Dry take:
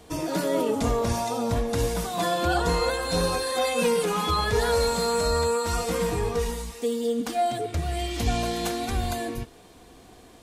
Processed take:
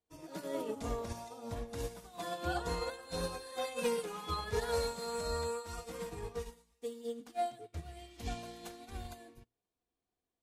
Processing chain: hum notches 60/120/180/240/300 Hz; upward expansion 2.5:1, over -42 dBFS; trim -8 dB

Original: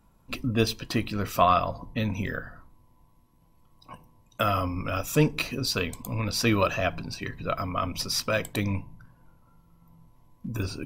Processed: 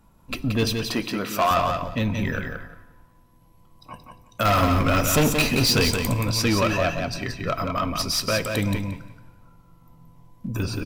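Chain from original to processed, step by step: 0.88–1.51 s: high-pass 220 Hz 12 dB/octave; 4.45–6.14 s: waveshaping leveller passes 2; saturation -20 dBFS, distortion -11 dB; feedback delay 176 ms, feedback 18%, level -5.5 dB; plate-style reverb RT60 1.4 s, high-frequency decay 1×, DRR 17 dB; trim +4.5 dB

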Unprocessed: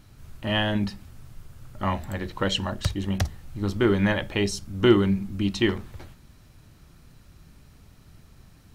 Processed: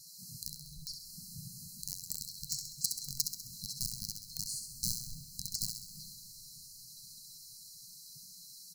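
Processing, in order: hum notches 50/100/150/200/250/300 Hz; spectral gate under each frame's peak -20 dB weak; comb 7.2 ms, depth 60%; compression 3:1, threshold -51 dBFS, peak gain reduction 20 dB; in parallel at -3 dB: companded quantiser 2-bit; on the sum: brick-wall FIR band-stop 220–4000 Hz; thinning echo 66 ms, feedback 54%, level -6 dB; on a send at -12 dB: reverberation RT60 4.4 s, pre-delay 32 ms; on the sum: trim +12 dB

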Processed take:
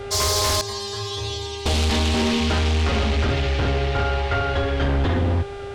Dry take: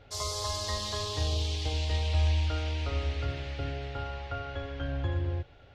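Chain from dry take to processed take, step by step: 0.61–1.66 s: inharmonic resonator 110 Hz, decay 0.55 s, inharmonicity 0.002; sine folder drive 13 dB, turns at -17 dBFS; mains buzz 400 Hz, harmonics 25, -34 dBFS -9 dB/octave

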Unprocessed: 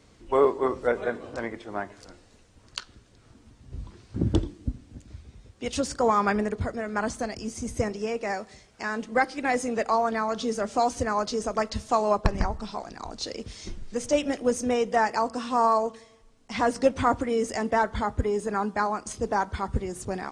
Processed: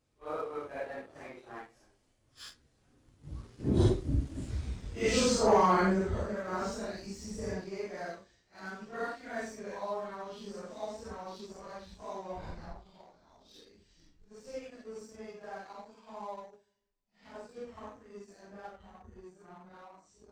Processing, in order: phase randomisation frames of 200 ms; Doppler pass-by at 4.68 s, 41 m/s, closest 16 m; waveshaping leveller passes 1; trim +4 dB

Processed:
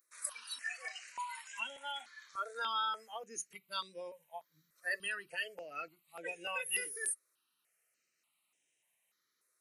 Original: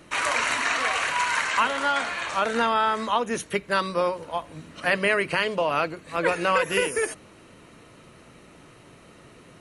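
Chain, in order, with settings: differentiator; spectral noise reduction 20 dB; bass shelf 80 Hz -8.5 dB; stepped phaser 3.4 Hz 800–4400 Hz; trim +4.5 dB

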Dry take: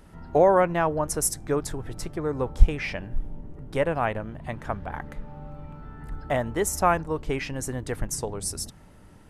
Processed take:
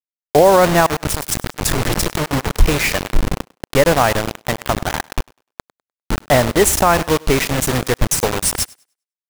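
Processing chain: 0.86–2.52 s: compressor with a negative ratio -33 dBFS, ratio -1; bit crusher 5-bit; thinning echo 100 ms, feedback 21%, high-pass 250 Hz, level -23 dB; loudness maximiser +13 dB; trim -1 dB

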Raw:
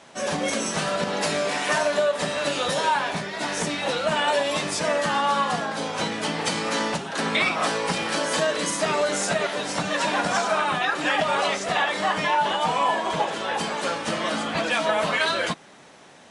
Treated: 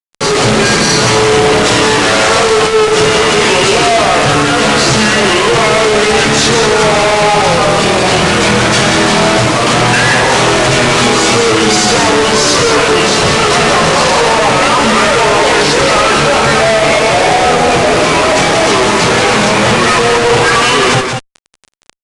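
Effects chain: flange 0.13 Hz, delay 5.6 ms, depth 5.5 ms, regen +41%; fuzz box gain 52 dB, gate -43 dBFS; delay 135 ms -5.5 dB; tape speed -26%; resampled via 22.05 kHz; trim +4.5 dB

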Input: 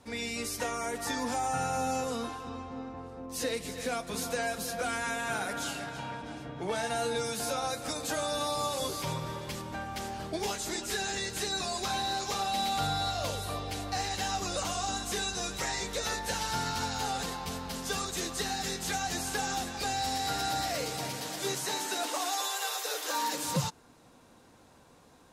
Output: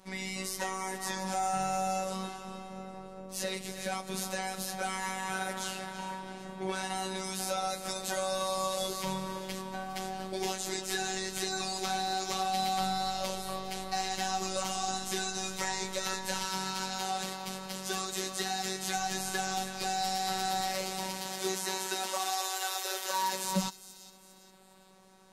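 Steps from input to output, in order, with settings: 16.45–18.97 s: Bessel high-pass 150 Hz, order 2; robot voice 189 Hz; feedback echo behind a high-pass 405 ms, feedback 40%, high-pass 3.6 kHz, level -14 dB; trim +1.5 dB

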